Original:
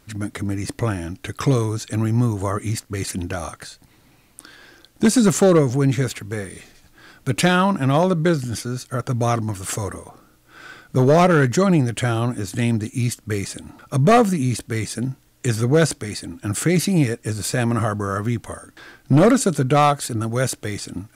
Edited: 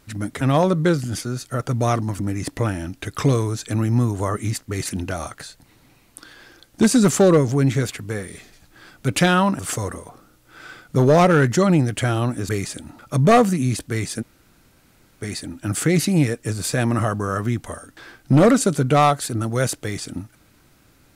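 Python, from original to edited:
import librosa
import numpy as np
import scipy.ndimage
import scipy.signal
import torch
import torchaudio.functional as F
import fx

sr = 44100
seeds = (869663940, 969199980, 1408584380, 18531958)

y = fx.edit(x, sr, fx.move(start_s=7.81, length_s=1.78, to_s=0.41),
    fx.cut(start_s=12.49, length_s=0.8),
    fx.room_tone_fill(start_s=15.02, length_s=1.0, crossfade_s=0.02), tone=tone)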